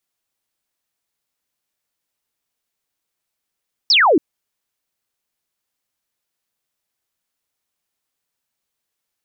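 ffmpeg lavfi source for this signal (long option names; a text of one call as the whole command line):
ffmpeg -f lavfi -i "aevalsrc='0.335*clip(t/0.002,0,1)*clip((0.28-t)/0.002,0,1)*sin(2*PI*5700*0.28/log(270/5700)*(exp(log(270/5700)*t/0.28)-1))':duration=0.28:sample_rate=44100" out.wav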